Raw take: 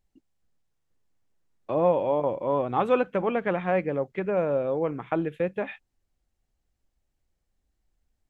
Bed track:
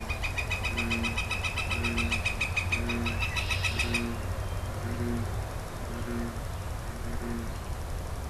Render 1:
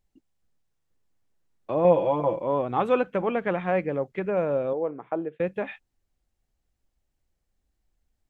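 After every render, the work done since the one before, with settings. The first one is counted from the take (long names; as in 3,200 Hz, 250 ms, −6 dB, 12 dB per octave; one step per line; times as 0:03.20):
0:01.84–0:02.41: comb filter 6 ms, depth 88%
0:04.73–0:05.40: resonant band-pass 550 Hz, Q 1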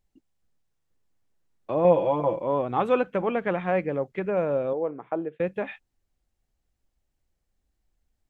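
no processing that can be heard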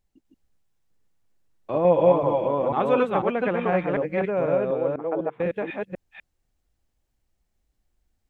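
delay that plays each chunk backwards 248 ms, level −1 dB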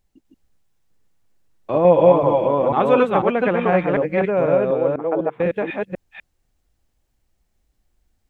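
level +5.5 dB
brickwall limiter −2 dBFS, peak gain reduction 1 dB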